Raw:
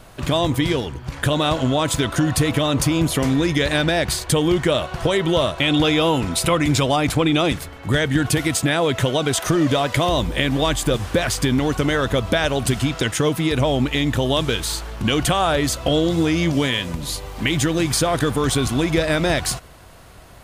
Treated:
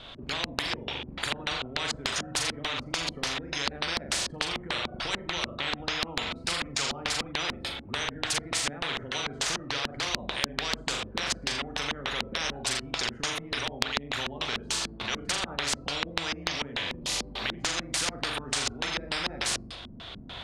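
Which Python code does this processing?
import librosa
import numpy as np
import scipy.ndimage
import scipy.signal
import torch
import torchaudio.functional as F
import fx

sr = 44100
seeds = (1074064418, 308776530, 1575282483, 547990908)

y = fx.rattle_buzz(x, sr, strikes_db=-28.0, level_db=-26.0)
y = fx.recorder_agc(y, sr, target_db=-9.5, rise_db_per_s=5.7, max_gain_db=30)
y = fx.low_shelf(y, sr, hz=220.0, db=-5.0)
y = fx.room_flutter(y, sr, wall_m=7.2, rt60_s=0.57)
y = fx.noise_reduce_blind(y, sr, reduce_db=12)
y = fx.filter_lfo_lowpass(y, sr, shape='square', hz=3.4, low_hz=230.0, high_hz=3500.0, q=7.9)
y = fx.spectral_comp(y, sr, ratio=10.0)
y = y * librosa.db_to_amplitude(-5.0)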